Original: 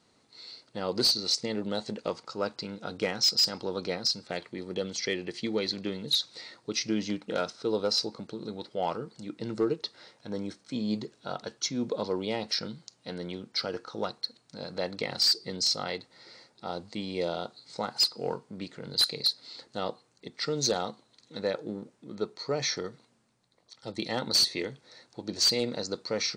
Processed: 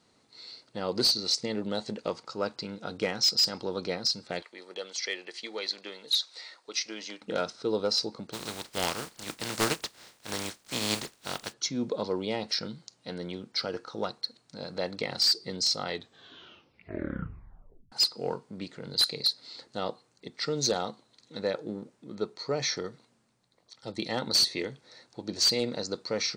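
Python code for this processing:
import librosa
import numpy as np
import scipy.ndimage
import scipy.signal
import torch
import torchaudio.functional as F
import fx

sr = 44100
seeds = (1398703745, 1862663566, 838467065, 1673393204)

y = fx.highpass(x, sr, hz=650.0, slope=12, at=(4.42, 7.22))
y = fx.spec_flatten(y, sr, power=0.33, at=(8.32, 11.52), fade=0.02)
y = fx.edit(y, sr, fx.tape_stop(start_s=15.86, length_s=2.06), tone=tone)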